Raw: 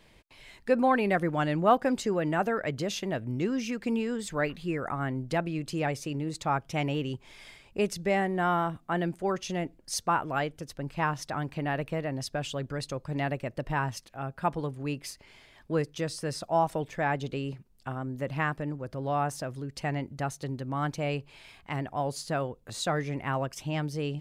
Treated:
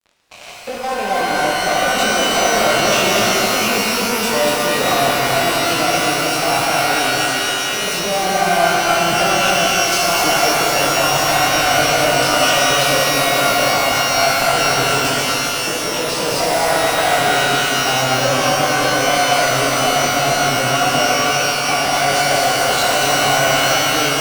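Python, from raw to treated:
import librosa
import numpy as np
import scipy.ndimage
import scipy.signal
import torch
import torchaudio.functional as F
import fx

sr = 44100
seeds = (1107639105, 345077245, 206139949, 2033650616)

p1 = fx.spec_steps(x, sr, hold_ms=50)
p2 = fx.low_shelf(p1, sr, hz=400.0, db=8.0)
p3 = fx.over_compress(p2, sr, threshold_db=-32.0, ratio=-1.0)
p4 = fx.vowel_filter(p3, sr, vowel='a')
p5 = fx.high_shelf(p4, sr, hz=4100.0, db=11.0)
p6 = fx.fuzz(p5, sr, gain_db=50.0, gate_db=-59.0)
p7 = p6 + fx.echo_single(p6, sr, ms=239, db=-5.0, dry=0)
p8 = fx.rev_shimmer(p7, sr, seeds[0], rt60_s=3.7, semitones=12, shimmer_db=-2, drr_db=-3.0)
y = F.gain(torch.from_numpy(p8), -6.0).numpy()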